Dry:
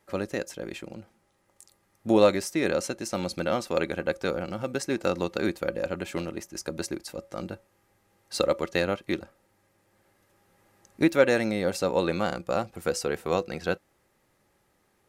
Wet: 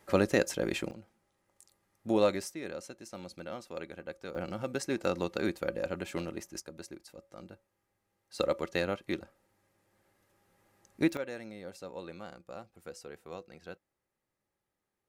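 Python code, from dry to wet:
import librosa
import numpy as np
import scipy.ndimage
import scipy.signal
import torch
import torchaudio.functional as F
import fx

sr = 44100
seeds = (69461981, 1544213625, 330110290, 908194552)

y = fx.gain(x, sr, db=fx.steps((0.0, 4.5), (0.91, -7.0), (2.52, -14.5), (4.35, -4.5), (6.6, -13.5), (8.39, -5.5), (11.17, -18.0)))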